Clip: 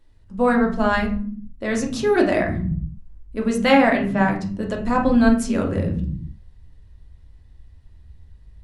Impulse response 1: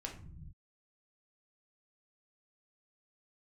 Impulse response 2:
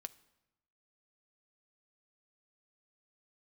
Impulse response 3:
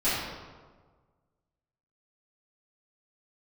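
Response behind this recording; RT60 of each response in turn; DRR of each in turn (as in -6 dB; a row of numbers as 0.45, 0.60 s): 1; not exponential, 0.95 s, 1.5 s; 0.5, 12.5, -14.5 dB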